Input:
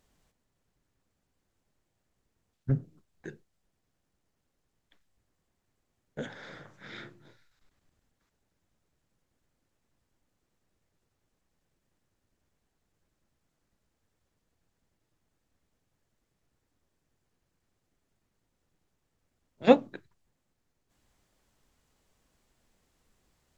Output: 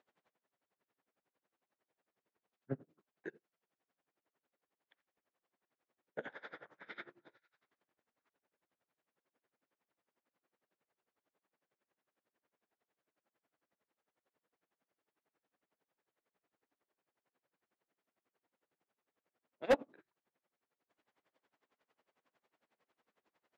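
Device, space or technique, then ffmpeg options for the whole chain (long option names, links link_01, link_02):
helicopter radio: -af "highpass=380,lowpass=2500,aeval=exprs='val(0)*pow(10,-24*(0.5-0.5*cos(2*PI*11*n/s))/20)':channel_layout=same,asoftclip=type=hard:threshold=-25.5dB,volume=3dB"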